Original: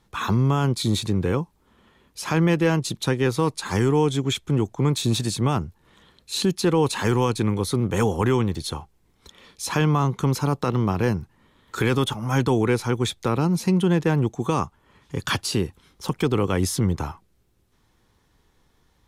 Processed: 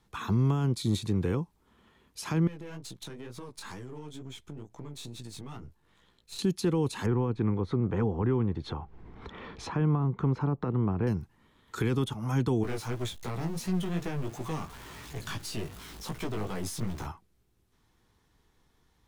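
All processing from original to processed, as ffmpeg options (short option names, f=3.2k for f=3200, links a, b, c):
-filter_complex "[0:a]asettb=1/sr,asplit=3[a][b][c];[a]atrim=end=2.474[d];[b]atrim=start=2.47:end=6.39,asetpts=PTS-STARTPTS,afade=t=in:d=0.004:c=qsin,afade=t=out:st=3.916:d=0.004:c=qsin,aeval=exprs='if(lt(val(0),0),0.447*val(0),val(0))':c=same,flanger=delay=15.5:depth=5.2:speed=2.2,acompressor=threshold=-32dB:ratio=12:attack=3.2:release=140:knee=1:detection=peak[e];[c]atrim=start=6.386[f];[d][e]acrossfade=d=0.004:c1=hsin:c2=qsin[g];[g][f]acrossfade=d=0.004:c1=qsin:c2=hsin,asettb=1/sr,asplit=3[h][i][j];[h]atrim=end=7.064[k];[i]atrim=start=7.06:end=11.07,asetpts=PTS-STARTPTS,afade=t=in:d=0.004:c=qsin,afade=t=out:st=4.006:d=0.004:c=qsin,lowpass=1.6k,acompressor=mode=upward:threshold=-23dB:ratio=2.5:attack=3.2:release=140:knee=2.83:detection=peak[l];[j]atrim=start=11.066[m];[k][l]acrossfade=d=0.004:c1=hsin:c2=qsin[n];[n][m]acrossfade=d=0.004:c1=qsin:c2=hsin,asettb=1/sr,asplit=3[o][p][q];[o]atrim=end=12.634[r];[p]atrim=start=12.63:end=17.06,asetpts=PTS-STARTPTS,afade=t=in:d=0.004:c=qsin,afade=t=out:st=4.426:d=0.004:c=qsin,aeval=exprs='val(0)+0.5*0.0316*sgn(val(0))':c=same,aeval=exprs='(tanh(8.91*val(0)+0.55)-tanh(0.55))/8.91':c=same,flanger=delay=15.5:depth=4.1:speed=2.8[s];[q]atrim=start=17.056[t];[r][s]acrossfade=d=0.004:c1=hsin:c2=qsin[u];[u][t]acrossfade=d=0.004:c1=qsin:c2=hsin,bandreject=f=550:w=12,acrossover=split=410[v][w];[w]acompressor=threshold=-31dB:ratio=6[x];[v][x]amix=inputs=2:normalize=0,volume=-5dB"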